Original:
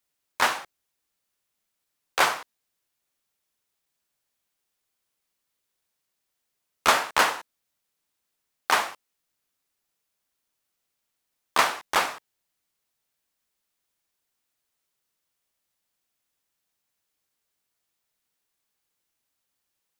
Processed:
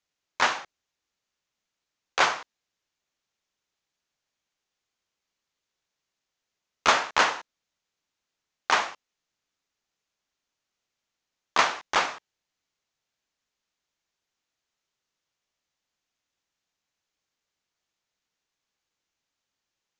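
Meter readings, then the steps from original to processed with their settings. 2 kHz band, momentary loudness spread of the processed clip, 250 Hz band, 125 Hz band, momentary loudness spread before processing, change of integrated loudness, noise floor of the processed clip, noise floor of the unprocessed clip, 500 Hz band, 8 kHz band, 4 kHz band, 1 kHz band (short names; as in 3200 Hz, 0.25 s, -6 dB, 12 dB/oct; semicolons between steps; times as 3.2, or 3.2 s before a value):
-0.5 dB, 14 LU, -1.0 dB, -1.0 dB, 14 LU, -0.5 dB, under -85 dBFS, -81 dBFS, -1.0 dB, -3.0 dB, -0.5 dB, -0.5 dB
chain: elliptic low-pass 6700 Hz, stop band 70 dB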